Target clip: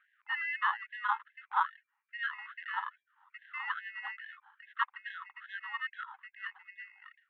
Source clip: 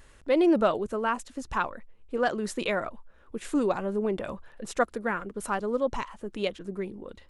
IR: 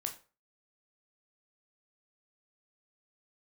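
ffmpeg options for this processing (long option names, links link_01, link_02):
-af "acrusher=samples=18:mix=1:aa=0.000001,highpass=frequency=390:width_type=q:width=0.5412,highpass=frequency=390:width_type=q:width=1.307,lowpass=frequency=2500:width_type=q:width=0.5176,lowpass=frequency=2500:width_type=q:width=0.7071,lowpass=frequency=2500:width_type=q:width=1.932,afreqshift=-92,afftfilt=real='re*gte(b*sr/1024,760*pow(1600/760,0.5+0.5*sin(2*PI*2.4*pts/sr)))':imag='im*gte(b*sr/1024,760*pow(1600/760,0.5+0.5*sin(2*PI*2.4*pts/sr)))':win_size=1024:overlap=0.75"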